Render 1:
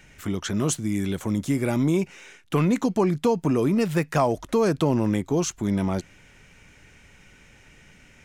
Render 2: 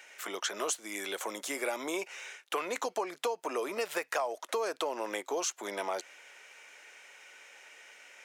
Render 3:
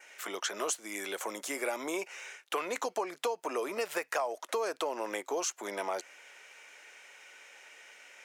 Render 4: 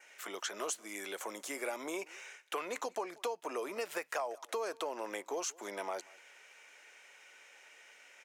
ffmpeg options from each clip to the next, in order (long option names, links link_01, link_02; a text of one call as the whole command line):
ffmpeg -i in.wav -af "highpass=frequency=500:width=0.5412,highpass=frequency=500:width=1.3066,acompressor=threshold=-31dB:ratio=6,volume=1.5dB" out.wav
ffmpeg -i in.wav -af "adynamicequalizer=threshold=0.00141:dfrequency=3600:dqfactor=2.7:tfrequency=3600:tqfactor=2.7:attack=5:release=100:ratio=0.375:range=2:mode=cutabove:tftype=bell" out.wav
ffmpeg -i in.wav -af "aecho=1:1:186:0.0631,volume=-4.5dB" out.wav